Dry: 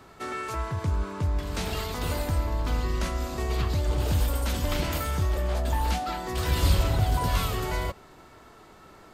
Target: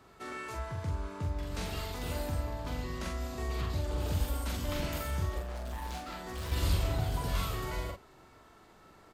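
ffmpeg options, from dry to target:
-filter_complex "[0:a]asettb=1/sr,asplit=3[a][b][c];[a]atrim=end=5.384[d];[b]atrim=start=5.38:end=6.52,asetpts=PTS-STARTPTS,afade=t=in:d=0.004:c=qsin,afade=t=out:st=1.136:d=0.004:c=qsin,volume=29dB,asoftclip=hard,volume=-29dB[e];[c]atrim=start=6.516[f];[d][e]acrossfade=d=0.004:c1=hsin:c2=qsin[g];[g][f]acrossfade=d=0.004:c1=qsin:c2=hsin,asplit=2[h][i];[i]adelay=44,volume=-3.5dB[j];[h][j]amix=inputs=2:normalize=0,volume=-8.5dB"

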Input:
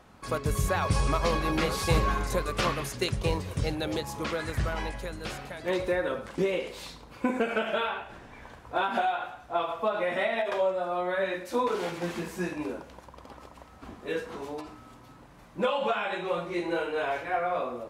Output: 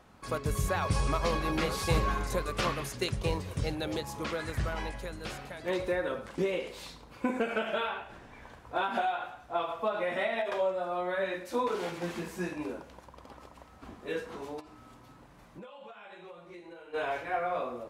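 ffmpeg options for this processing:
-filter_complex "[0:a]asplit=3[a][b][c];[a]afade=t=out:st=14.59:d=0.02[d];[b]acompressor=threshold=-42dB:ratio=20,afade=t=in:st=14.59:d=0.02,afade=t=out:st=16.93:d=0.02[e];[c]afade=t=in:st=16.93:d=0.02[f];[d][e][f]amix=inputs=3:normalize=0,volume=-3dB"

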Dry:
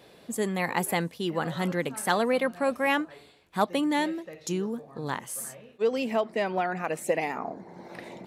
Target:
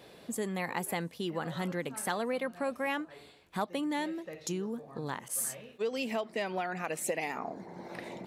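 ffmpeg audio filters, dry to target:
-filter_complex "[0:a]acompressor=threshold=-36dB:ratio=2,asettb=1/sr,asplit=3[a][b][c];[a]atrim=end=5.284[d];[b]atrim=start=5.28:end=7.66,asetpts=PTS-STARTPTS,afade=t=in:d=0.004:c=qsin,afade=t=out:st=2.376:d=0.004:c=qsin,adynamicequalizer=threshold=0.00224:dfrequency=2000:dqfactor=0.7:tfrequency=2000:tqfactor=0.7:attack=5:release=100:ratio=0.375:range=3:mode=boostabove:tftype=highshelf[e];[c]atrim=start=7.656[f];[d][e]acrossfade=d=0.004:c1=hsin:c2=qsin[g];[g][f]acrossfade=d=0.004:c1=qsin:c2=hsin"

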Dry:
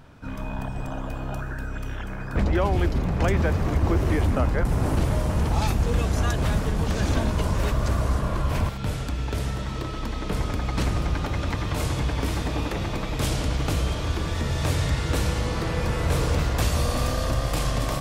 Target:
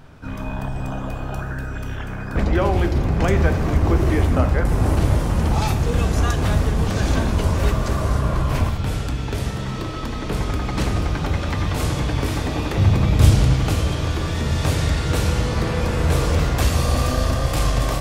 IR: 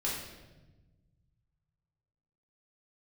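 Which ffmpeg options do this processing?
-filter_complex "[0:a]asettb=1/sr,asplit=3[a][b][c];[a]atrim=end=12.774[d];[b]atrim=start=12.77:end=13.43,asetpts=PTS-STARTPTS,afade=t=in:d=0.004:c=qsin,afade=t=out:st=0.656:d=0.004:c=qsin,equalizer=f=94:w=0.74:g=12.5[e];[c]atrim=start=13.426[f];[d][e]acrossfade=d=0.004:c1=hsin:c2=qsin[g];[g][f]acrossfade=d=0.004:c1=qsin:c2=hsin,asplit=2[h][i];[1:a]atrim=start_sample=2205,asetrate=57330,aresample=44100[j];[i][j]afir=irnorm=-1:irlink=0,volume=-7.5dB[k];[h][k]amix=inputs=2:normalize=0,volume=1dB"

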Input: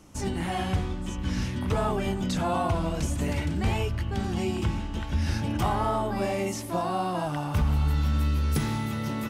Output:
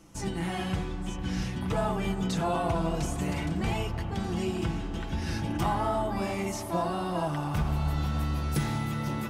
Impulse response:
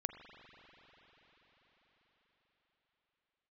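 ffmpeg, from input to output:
-filter_complex "[0:a]asplit=2[a][b];[1:a]atrim=start_sample=2205,asetrate=23373,aresample=44100,adelay=6[c];[b][c]afir=irnorm=-1:irlink=0,volume=-7.5dB[d];[a][d]amix=inputs=2:normalize=0,volume=-3dB"

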